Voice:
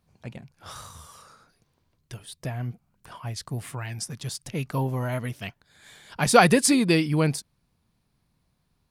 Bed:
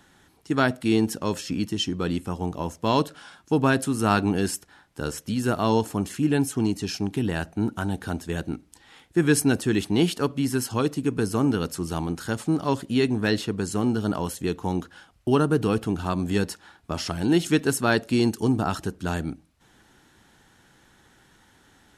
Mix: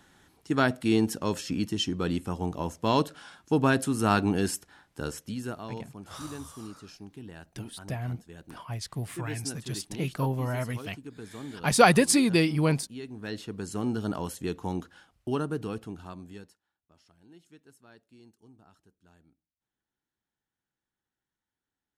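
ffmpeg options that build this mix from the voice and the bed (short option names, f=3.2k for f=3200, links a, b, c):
-filter_complex "[0:a]adelay=5450,volume=-2dB[a];[1:a]volume=10.5dB,afade=t=out:st=4.86:d=0.82:silence=0.158489,afade=t=in:st=13.09:d=0.85:silence=0.223872,afade=t=out:st=14.7:d=1.91:silence=0.0375837[b];[a][b]amix=inputs=2:normalize=0"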